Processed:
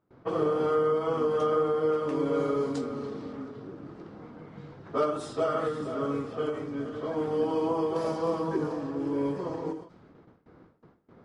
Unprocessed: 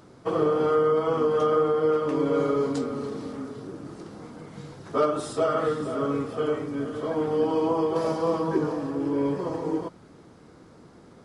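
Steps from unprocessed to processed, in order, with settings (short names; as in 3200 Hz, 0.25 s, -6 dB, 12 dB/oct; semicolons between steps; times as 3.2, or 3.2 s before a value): low-pass opened by the level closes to 2100 Hz, open at -20.5 dBFS; gate with hold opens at -41 dBFS; ending taper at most 120 dB/s; gain -3.5 dB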